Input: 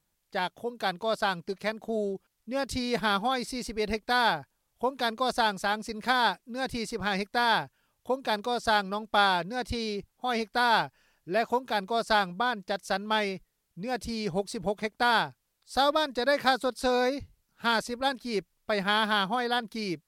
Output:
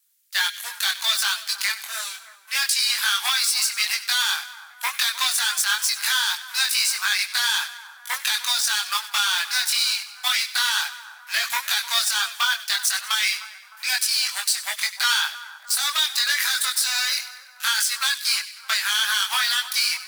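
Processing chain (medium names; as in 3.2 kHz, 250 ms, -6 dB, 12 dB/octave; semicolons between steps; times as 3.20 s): waveshaping leveller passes 3; tilt EQ +4.5 dB/octave; peak limiter -7.5 dBFS, peak gain reduction 11 dB; inverse Chebyshev high-pass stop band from 360 Hz, stop band 60 dB; compression, threshold -23 dBFS, peak gain reduction 8.5 dB; chorus voices 4, 0.24 Hz, delay 22 ms, depth 3.8 ms; on a send: two-band feedback delay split 1.7 kHz, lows 307 ms, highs 96 ms, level -14.5 dB; on the sum: trim +8 dB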